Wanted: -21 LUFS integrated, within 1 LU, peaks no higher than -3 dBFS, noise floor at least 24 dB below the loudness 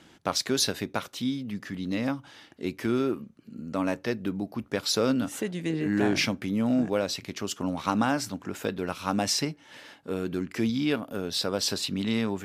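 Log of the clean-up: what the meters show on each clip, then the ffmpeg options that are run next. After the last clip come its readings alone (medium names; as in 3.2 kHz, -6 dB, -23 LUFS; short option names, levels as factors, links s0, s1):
loudness -29.0 LUFS; peak level -10.0 dBFS; loudness target -21.0 LUFS
-> -af "volume=2.51,alimiter=limit=0.708:level=0:latency=1"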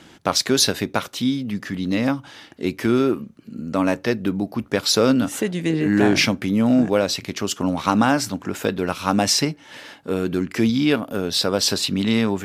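loudness -21.0 LUFS; peak level -3.0 dBFS; noise floor -48 dBFS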